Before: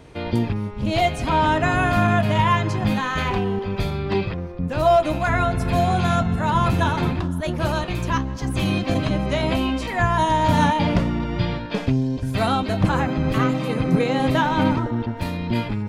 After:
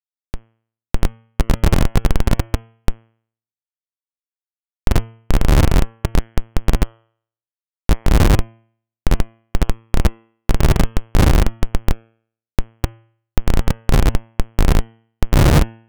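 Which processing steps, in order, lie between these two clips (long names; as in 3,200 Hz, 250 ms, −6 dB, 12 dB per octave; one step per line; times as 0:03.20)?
wind on the microphone 140 Hz −16 dBFS
comparator with hysteresis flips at −8.5 dBFS
hum removal 113.3 Hz, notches 29
expander for the loud parts 1.5 to 1, over −25 dBFS
level +6.5 dB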